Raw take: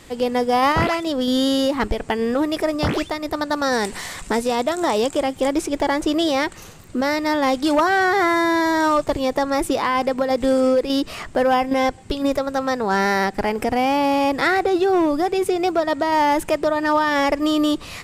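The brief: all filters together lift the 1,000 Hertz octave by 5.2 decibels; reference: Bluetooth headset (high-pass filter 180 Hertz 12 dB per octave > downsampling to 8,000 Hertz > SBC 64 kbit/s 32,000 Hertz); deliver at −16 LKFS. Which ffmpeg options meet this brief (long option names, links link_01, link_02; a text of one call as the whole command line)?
ffmpeg -i in.wav -af "highpass=180,equalizer=frequency=1000:width_type=o:gain=6.5,aresample=8000,aresample=44100,volume=1.5dB" -ar 32000 -c:a sbc -b:a 64k out.sbc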